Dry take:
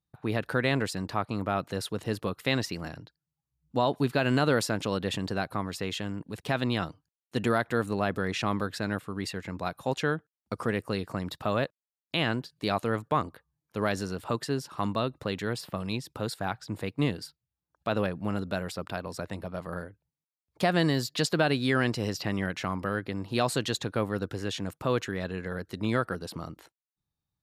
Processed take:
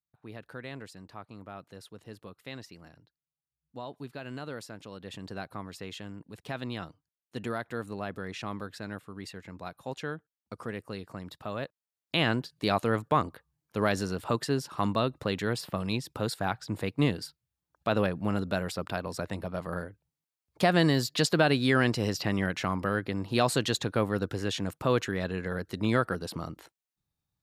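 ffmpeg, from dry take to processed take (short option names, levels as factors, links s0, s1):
-af "volume=1.19,afade=t=in:st=4.95:d=0.42:silence=0.446684,afade=t=in:st=11.58:d=0.6:silence=0.334965"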